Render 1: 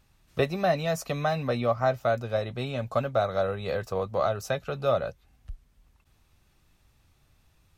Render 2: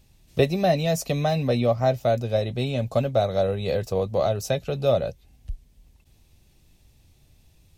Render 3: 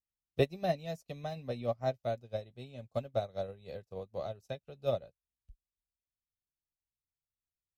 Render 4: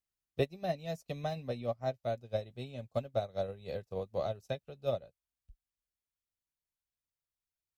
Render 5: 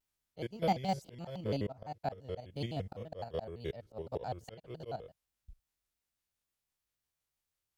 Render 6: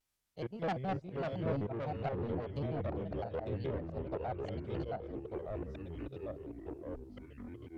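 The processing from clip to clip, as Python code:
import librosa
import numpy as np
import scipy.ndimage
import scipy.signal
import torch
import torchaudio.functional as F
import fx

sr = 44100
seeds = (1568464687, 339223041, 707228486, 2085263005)

y1 = fx.peak_eq(x, sr, hz=1300.0, db=-14.5, octaves=1.1)
y1 = y1 * librosa.db_to_amplitude(7.0)
y2 = fx.upward_expand(y1, sr, threshold_db=-41.0, expansion=2.5)
y2 = y2 * librosa.db_to_amplitude(-7.0)
y3 = fx.rider(y2, sr, range_db=5, speed_s=0.5)
y4 = fx.spec_steps(y3, sr, hold_ms=50)
y4 = fx.auto_swell(y4, sr, attack_ms=274.0)
y4 = fx.vibrato_shape(y4, sr, shape='square', rate_hz=5.9, depth_cents=250.0)
y4 = y4 * librosa.db_to_amplitude(6.5)
y5 = fx.env_lowpass_down(y4, sr, base_hz=1500.0, full_db=-36.0)
y5 = 10.0 ** (-33.5 / 20.0) * np.tanh(y5 / 10.0 ** (-33.5 / 20.0))
y5 = fx.echo_pitch(y5, sr, ms=416, semitones=-3, count=3, db_per_echo=-3.0)
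y5 = y5 * librosa.db_to_amplitude(2.5)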